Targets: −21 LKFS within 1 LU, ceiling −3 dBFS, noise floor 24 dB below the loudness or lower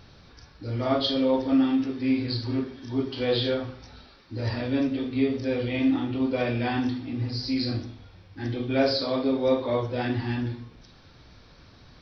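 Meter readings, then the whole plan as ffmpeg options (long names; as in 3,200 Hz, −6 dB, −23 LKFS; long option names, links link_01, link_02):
integrated loudness −26.5 LKFS; sample peak −10.0 dBFS; target loudness −21.0 LKFS
→ -af "volume=5.5dB"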